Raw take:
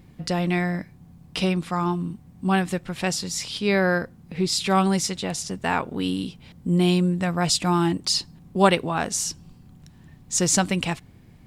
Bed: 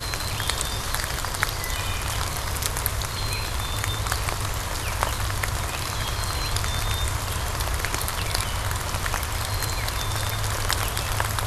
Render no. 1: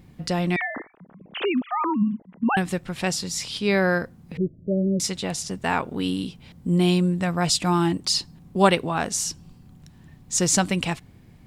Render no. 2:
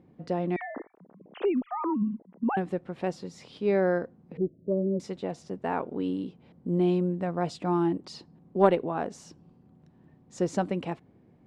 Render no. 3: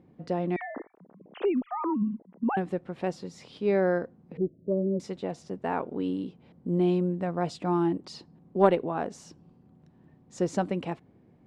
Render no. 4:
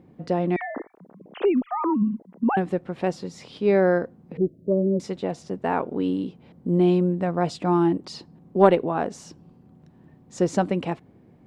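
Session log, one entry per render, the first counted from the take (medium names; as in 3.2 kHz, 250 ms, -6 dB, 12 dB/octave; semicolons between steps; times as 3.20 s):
0.56–2.57 s: formants replaced by sine waves; 4.37–5.00 s: Chebyshev low-pass 660 Hz, order 10
band-pass filter 430 Hz, Q 1; Chebyshev shaper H 2 -22 dB, 3 -31 dB, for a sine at -6.5 dBFS
no audible change
trim +5.5 dB; peak limiter -1 dBFS, peak gain reduction 1 dB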